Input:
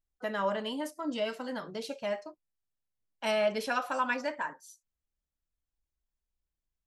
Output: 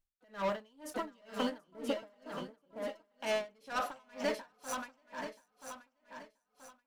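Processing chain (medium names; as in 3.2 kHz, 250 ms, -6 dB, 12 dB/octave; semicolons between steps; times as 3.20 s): 1.58–2.10 s: low-pass 1.8 kHz 24 dB/octave; waveshaping leveller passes 3; compression 6:1, threshold -39 dBFS, peak gain reduction 16.5 dB; on a send: shuffle delay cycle 980 ms, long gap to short 3:1, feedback 34%, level -6 dB; on the sum: logarithmic tremolo 2.1 Hz, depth 35 dB; trim +7.5 dB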